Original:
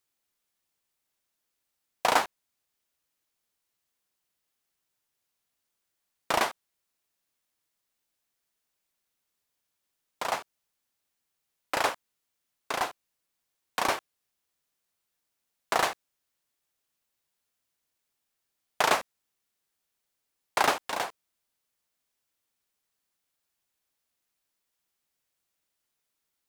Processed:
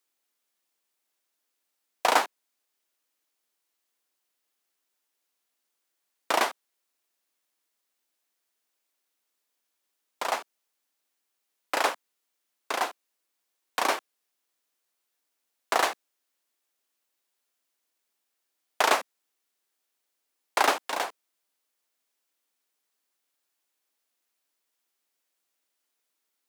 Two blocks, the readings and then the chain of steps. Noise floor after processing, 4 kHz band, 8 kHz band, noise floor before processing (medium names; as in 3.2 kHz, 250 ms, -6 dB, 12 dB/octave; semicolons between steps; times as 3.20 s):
-81 dBFS, +1.5 dB, +1.5 dB, -82 dBFS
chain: high-pass 240 Hz 24 dB/octave; trim +1.5 dB